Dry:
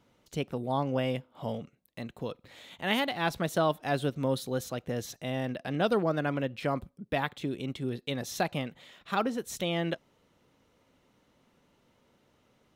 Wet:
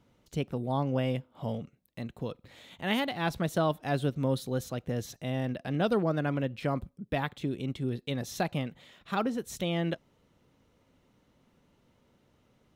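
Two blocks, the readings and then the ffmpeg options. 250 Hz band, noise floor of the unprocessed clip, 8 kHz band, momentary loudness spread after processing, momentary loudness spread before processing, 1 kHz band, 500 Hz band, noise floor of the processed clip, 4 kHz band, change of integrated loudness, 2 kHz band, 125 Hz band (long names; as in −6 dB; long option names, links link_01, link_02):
+1.0 dB, −69 dBFS, −2.5 dB, 10 LU, 12 LU, −2.0 dB, −1.0 dB, −69 dBFS, −2.5 dB, 0.0 dB, −2.5 dB, +3.0 dB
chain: -af "lowshelf=frequency=240:gain=7.5,volume=-2.5dB"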